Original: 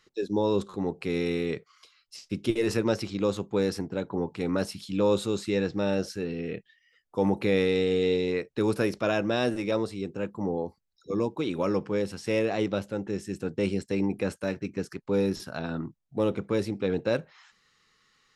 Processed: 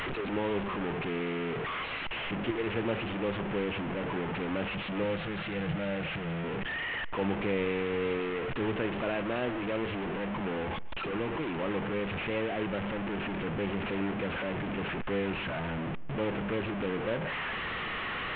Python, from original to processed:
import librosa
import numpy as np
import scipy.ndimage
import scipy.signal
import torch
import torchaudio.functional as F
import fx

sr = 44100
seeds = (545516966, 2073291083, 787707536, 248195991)

y = fx.delta_mod(x, sr, bps=16000, step_db=-21.5)
y = fx.graphic_eq_31(y, sr, hz=(160, 250, 400, 1000), db=(11, -11, -8, -7), at=(5.03, 6.44))
y = y + 10.0 ** (-20.5 / 20.0) * np.pad(y, (int(145 * sr / 1000.0), 0))[:len(y)]
y = y * 10.0 ** (-6.5 / 20.0)